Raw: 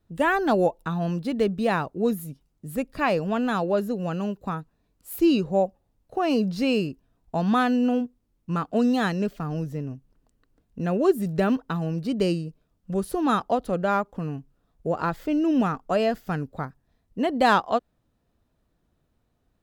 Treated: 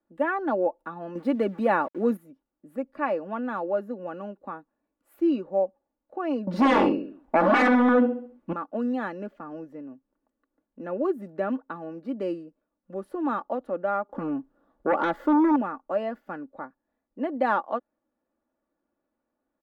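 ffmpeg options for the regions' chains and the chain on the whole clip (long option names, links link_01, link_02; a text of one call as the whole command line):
ffmpeg -i in.wav -filter_complex "[0:a]asettb=1/sr,asplit=3[link_01][link_02][link_03];[link_01]atrim=end=1.154[link_04];[link_02]atrim=start=1.15:end=2.17,asetpts=PTS-STARTPTS,afade=type=in:duration=0.004:curve=qsin,afade=type=out:start_time=1.016:duration=0.004:curve=qsin,highshelf=frequency=7500:gain=8.5,acontrast=89,aeval=exprs='val(0)*gte(abs(val(0)),0.0141)':channel_layout=same[link_05];[link_03]atrim=start=2.166[link_06];[link_04][link_05]acrossfade=duration=0.004:curve1=hsin:curve2=qsin[link_07];[link_07][link_06]acrossfade=duration=0.004:curve1=qsin:curve2=hsin,asettb=1/sr,asplit=3[link_08][link_09][link_10];[link_08]atrim=end=6.474[link_11];[link_09]atrim=start=6.47:end=8.53,asetpts=PTS-STARTPTS,afade=type=in:duration=0.004:curve=qsin,afade=type=out:start_time=2.056:duration=0.004:curve=qsin,asplit=2[link_12][link_13];[link_13]adelay=67,lowpass=frequency=4400:poles=1,volume=-7.5dB,asplit=2[link_14][link_15];[link_15]adelay=67,lowpass=frequency=4400:poles=1,volume=0.42,asplit=2[link_16][link_17];[link_17]adelay=67,lowpass=frequency=4400:poles=1,volume=0.42,asplit=2[link_18][link_19];[link_19]adelay=67,lowpass=frequency=4400:poles=1,volume=0.42,asplit=2[link_20][link_21];[link_21]adelay=67,lowpass=frequency=4400:poles=1,volume=0.42[link_22];[link_12][link_14][link_16][link_18][link_20][link_22]amix=inputs=6:normalize=0,atrim=end_sample=90846,aeval=exprs='0.335*sin(PI/2*4.47*val(0)/0.335)':channel_layout=same[link_23];[link_10]atrim=start=8.526[link_24];[link_11][link_23]acrossfade=duration=0.004:curve1=hsin:curve2=qsin[link_25];[link_25][link_24]acrossfade=duration=0.004:curve1=qsin:curve2=hsin,asettb=1/sr,asplit=3[link_26][link_27][link_28];[link_26]atrim=end=14.094[link_29];[link_27]atrim=start=14.09:end=15.56,asetpts=PTS-STARTPTS,afade=type=in:duration=0.004:curve=qsin,afade=type=out:start_time=1.466:duration=0.004:curve=qsin,equalizer=frequency=2400:width_type=o:width=0.43:gain=-7,aeval=exprs='0.211*sin(PI/2*2.82*val(0)/0.211)':channel_layout=same[link_30];[link_28]atrim=start=15.556[link_31];[link_29][link_30]acrossfade=duration=0.004:curve1=hsin:curve2=qsin[link_32];[link_32][link_31]acrossfade=duration=0.004:curve1=qsin:curve2=hsin,acrossover=split=230 2000:gain=0.0708 1 0.0794[link_33][link_34][link_35];[link_33][link_34][link_35]amix=inputs=3:normalize=0,aecho=1:1:3.5:0.58,volume=-4.5dB" out.wav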